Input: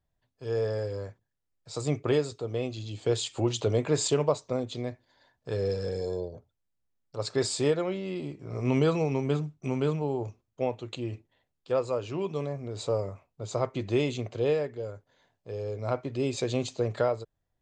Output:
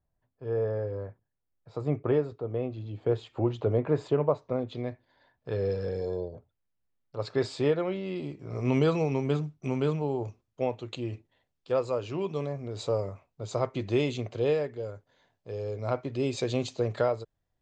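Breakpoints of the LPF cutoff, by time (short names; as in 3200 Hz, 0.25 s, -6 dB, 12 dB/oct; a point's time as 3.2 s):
4.26 s 1500 Hz
4.89 s 3200 Hz
7.77 s 3200 Hz
8.33 s 6900 Hz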